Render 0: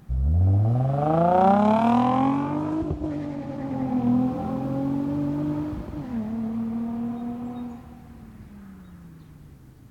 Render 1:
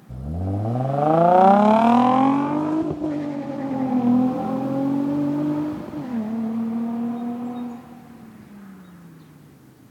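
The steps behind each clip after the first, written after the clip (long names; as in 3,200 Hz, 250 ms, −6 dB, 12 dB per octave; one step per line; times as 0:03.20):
high-pass filter 190 Hz 12 dB per octave
level +5 dB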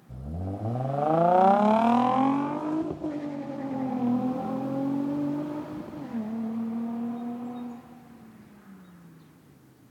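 mains-hum notches 50/100/150/200/250/300 Hz
level −6 dB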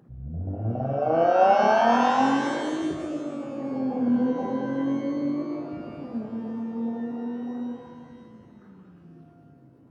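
spectral envelope exaggerated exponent 2
reverb with rising layers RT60 1.4 s, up +12 semitones, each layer −8 dB, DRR 4.5 dB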